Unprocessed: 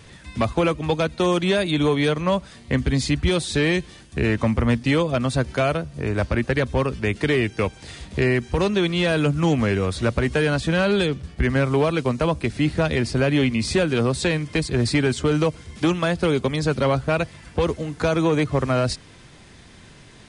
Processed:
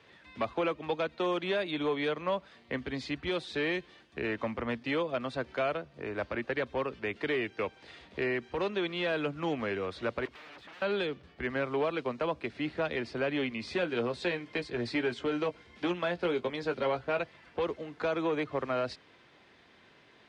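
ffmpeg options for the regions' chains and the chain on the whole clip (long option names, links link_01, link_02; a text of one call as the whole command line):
ffmpeg -i in.wav -filter_complex "[0:a]asettb=1/sr,asplit=3[link_01][link_02][link_03];[link_01]atrim=end=10.254[link_04];[link_02]atrim=start=10.25:end=10.82,asetpts=PTS-STARTPTS,afade=type=in:duration=0.004:curve=qsin,afade=type=out:start_time=0.566:duration=0.004:curve=qsin,aeval=exprs='0.0398*(abs(mod(val(0)/0.0398+3,4)-2)-1)':channel_layout=same,acrossover=split=320|1200|2900|6900[link_05][link_06][link_07][link_08][link_09];[link_05]acompressor=threshold=-41dB:ratio=3[link_10];[link_06]acompressor=threshold=-51dB:ratio=3[link_11];[link_07]acompressor=threshold=-43dB:ratio=3[link_12];[link_08]acompressor=threshold=-53dB:ratio=3[link_13];[link_09]acompressor=threshold=-52dB:ratio=3[link_14];[link_10][link_11][link_12][link_13][link_14]amix=inputs=5:normalize=0[link_15];[link_03]atrim=start=10.816[link_16];[link_04][link_15]acrossfade=duration=0.004:curve1=hsin:curve2=qsin[link_17];[link_17][link_16]acrossfade=duration=0.004:curve1=qsin:curve2=hsin,asettb=1/sr,asplit=3[link_18][link_19][link_20];[link_18]atrim=end=13.734[link_21];[link_19]atrim=start=13.73:end=17.21,asetpts=PTS-STARTPTS,afade=type=in:duration=0.004:curve=qsin,afade=type=out:start_time=3.476:duration=0.004:curve=qsin,bandreject=frequency=1200:width=16,asplit=2[link_22][link_23];[link_23]adelay=17,volume=-8.5dB[link_24];[link_22][link_24]amix=inputs=2:normalize=0,atrim=end_sample=153468[link_25];[link_20]atrim=start=17.206[link_26];[link_21][link_25]acrossfade=duration=0.004:curve1=hsin:curve2=qsin[link_27];[link_27][link_26]acrossfade=duration=0.004:curve1=qsin:curve2=hsin,highpass=57,acrossover=split=280 4300:gain=0.178 1 0.0631[link_28][link_29][link_30];[link_28][link_29][link_30]amix=inputs=3:normalize=0,volume=-8.5dB" out.wav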